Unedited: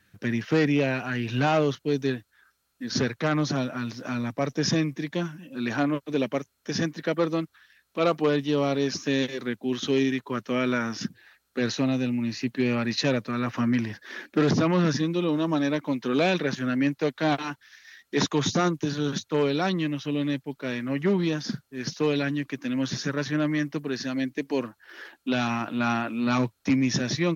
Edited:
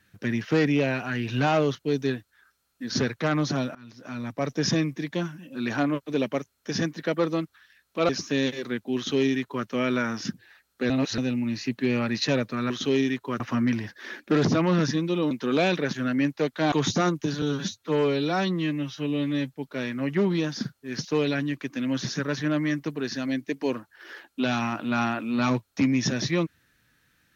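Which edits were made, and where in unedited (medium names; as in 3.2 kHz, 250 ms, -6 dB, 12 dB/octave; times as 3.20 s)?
3.75–4.52 s: fade in, from -24 dB
8.09–8.85 s: delete
9.72–10.42 s: copy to 13.46 s
11.66–11.94 s: reverse
15.37–15.93 s: delete
17.34–18.31 s: delete
19.01–20.42 s: stretch 1.5×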